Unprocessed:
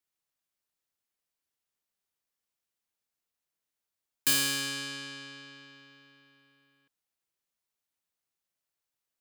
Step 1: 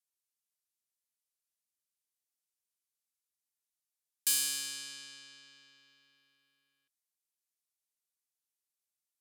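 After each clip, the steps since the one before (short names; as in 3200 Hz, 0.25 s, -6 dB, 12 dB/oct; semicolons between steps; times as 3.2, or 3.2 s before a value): LPF 12000 Hz 12 dB/oct; pre-emphasis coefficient 0.9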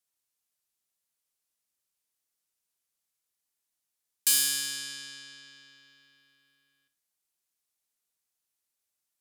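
flutter echo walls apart 10 m, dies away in 0.35 s; gain +5.5 dB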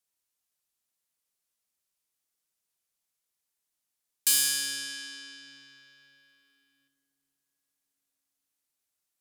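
reverb RT60 4.6 s, pre-delay 35 ms, DRR 9.5 dB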